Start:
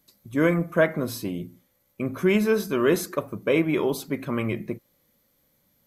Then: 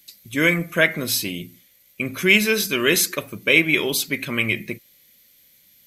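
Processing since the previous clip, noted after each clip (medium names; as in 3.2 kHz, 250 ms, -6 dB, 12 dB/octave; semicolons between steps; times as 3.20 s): resonant high shelf 1.6 kHz +13.5 dB, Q 1.5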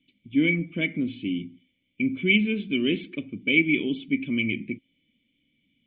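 cascade formant filter i; trim +6 dB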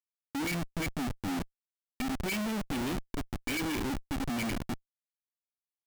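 Schmitt trigger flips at -29.5 dBFS; trim -5 dB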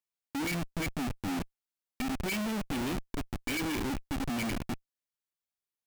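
rattle on loud lows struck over -37 dBFS, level -42 dBFS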